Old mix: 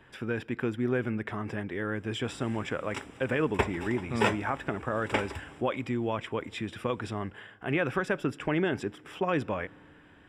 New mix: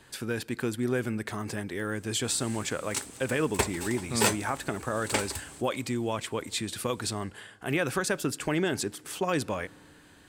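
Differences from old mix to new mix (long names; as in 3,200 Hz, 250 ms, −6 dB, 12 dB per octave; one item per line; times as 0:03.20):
background: send −11.0 dB
master: remove Savitzky-Golay smoothing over 25 samples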